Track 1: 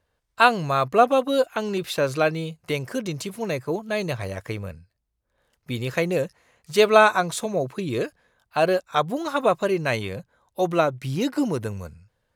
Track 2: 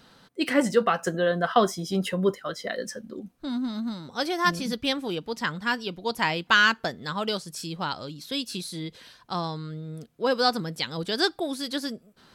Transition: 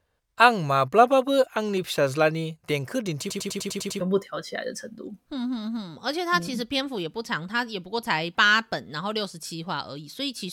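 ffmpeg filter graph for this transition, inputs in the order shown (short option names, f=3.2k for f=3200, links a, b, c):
-filter_complex "[0:a]apad=whole_dur=10.52,atrim=end=10.52,asplit=8[a][b][c][d][e][f][g][h];[a]atrim=end=3.302[i];[b]atrim=start=3.198:end=3.302[j];[c]atrim=start=3.198:end=3.302[k];[d]atrim=start=3.198:end=3.302[l];[e]atrim=start=3.198:end=3.302[m];[f]atrim=start=3.198:end=3.302[n];[g]atrim=start=3.198:end=3.302[o];[h]atrim=start=3.198:end=3.302[p];[1:a]atrim=start=2.118:end=8.64[q];[i][j]acrossfade=d=0.004:c1=hsin:c2=hsin[r];[r][k]acrossfade=d=0.004:c1=hsin:c2=hsin[s];[s][l]acrossfade=d=0.004:c1=hsin:c2=hsin[t];[t][m]acrossfade=d=0.004:c1=hsin:c2=hsin[u];[u][n]acrossfade=d=0.004:c1=hsin:c2=hsin[v];[v][o]acrossfade=d=0.004:c1=hsin:c2=hsin[w];[w][p]acrossfade=d=0.004:c1=hsin:c2=hsin[x];[x][q]acrossfade=d=0.004:c1=hsin:c2=hsin"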